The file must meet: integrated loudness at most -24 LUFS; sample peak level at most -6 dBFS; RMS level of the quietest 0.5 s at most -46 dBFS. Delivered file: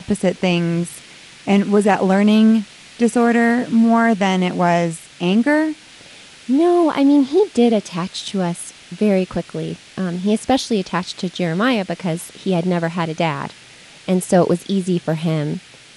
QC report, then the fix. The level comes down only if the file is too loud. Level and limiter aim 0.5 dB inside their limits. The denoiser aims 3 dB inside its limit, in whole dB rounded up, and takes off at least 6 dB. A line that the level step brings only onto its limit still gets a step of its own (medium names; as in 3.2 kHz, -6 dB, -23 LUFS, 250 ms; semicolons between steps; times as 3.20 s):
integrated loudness -18.0 LUFS: fail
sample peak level -3.5 dBFS: fail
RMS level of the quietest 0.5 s -43 dBFS: fail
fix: trim -6.5 dB